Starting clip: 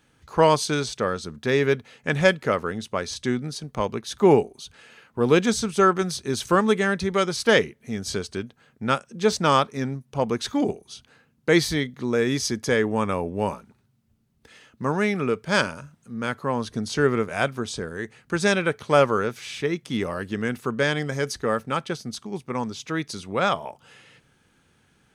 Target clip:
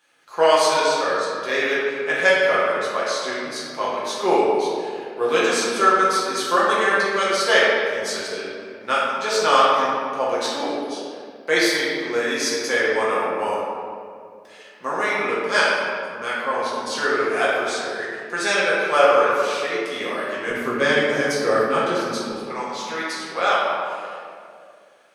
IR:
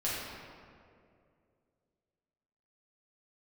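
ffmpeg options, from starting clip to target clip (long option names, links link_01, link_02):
-filter_complex "[0:a]asetnsamples=nb_out_samples=441:pad=0,asendcmd='20.5 highpass f 260;22.31 highpass f 620',highpass=570[link_01];[1:a]atrim=start_sample=2205[link_02];[link_01][link_02]afir=irnorm=-1:irlink=0"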